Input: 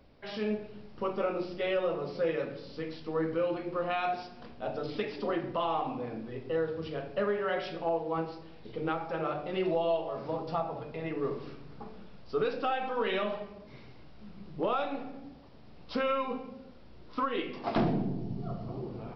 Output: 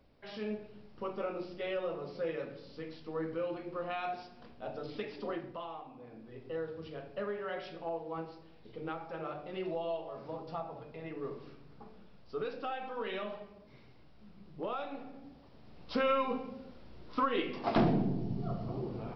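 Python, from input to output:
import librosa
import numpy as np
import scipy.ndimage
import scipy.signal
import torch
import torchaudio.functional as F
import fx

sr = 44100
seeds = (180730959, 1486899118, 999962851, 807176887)

y = fx.gain(x, sr, db=fx.line((5.31, -6.0), (5.89, -16.5), (6.45, -7.5), (14.84, -7.5), (16.11, 0.5)))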